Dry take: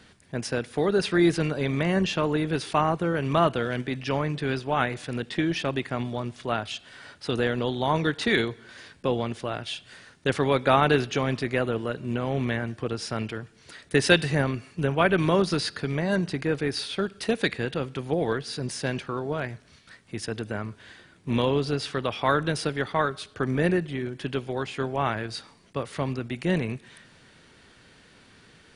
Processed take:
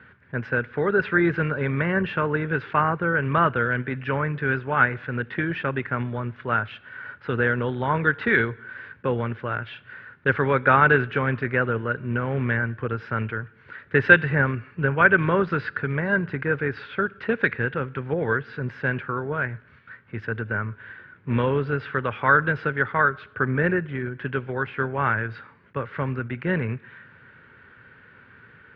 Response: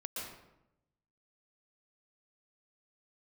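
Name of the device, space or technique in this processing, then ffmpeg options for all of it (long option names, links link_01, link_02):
bass cabinet: -af "highpass=71,equalizer=frequency=110:width_type=q:width=4:gain=4,equalizer=frequency=190:width_type=q:width=4:gain=-4,equalizer=frequency=310:width_type=q:width=4:gain=-7,equalizer=frequency=700:width_type=q:width=4:gain=-10,equalizer=frequency=1500:width_type=q:width=4:gain=10,lowpass=frequency=2300:width=0.5412,lowpass=frequency=2300:width=1.3066,volume=3dB"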